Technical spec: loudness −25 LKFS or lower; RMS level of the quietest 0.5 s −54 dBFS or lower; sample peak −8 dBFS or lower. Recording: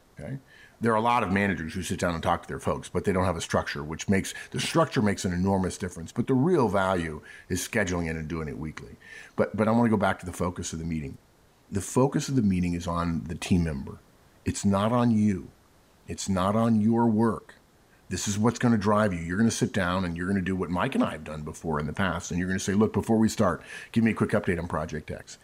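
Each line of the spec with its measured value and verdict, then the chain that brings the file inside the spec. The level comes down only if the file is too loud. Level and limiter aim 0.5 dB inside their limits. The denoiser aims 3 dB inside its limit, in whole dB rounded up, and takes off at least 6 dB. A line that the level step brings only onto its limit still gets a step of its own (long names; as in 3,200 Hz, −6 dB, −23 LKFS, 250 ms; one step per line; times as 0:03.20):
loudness −27.0 LKFS: in spec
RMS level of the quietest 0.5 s −60 dBFS: in spec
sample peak −11.0 dBFS: in spec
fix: no processing needed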